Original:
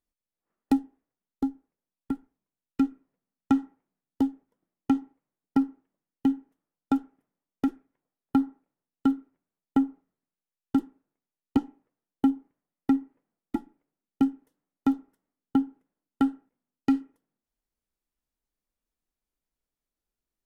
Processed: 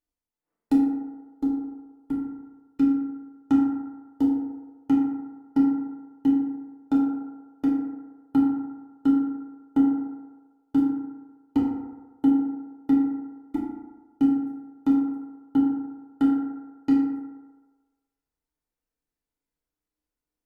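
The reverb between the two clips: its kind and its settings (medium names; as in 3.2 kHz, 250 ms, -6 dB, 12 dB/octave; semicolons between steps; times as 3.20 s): FDN reverb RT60 1.3 s, low-frequency decay 0.75×, high-frequency decay 0.35×, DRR -5 dB; trim -6 dB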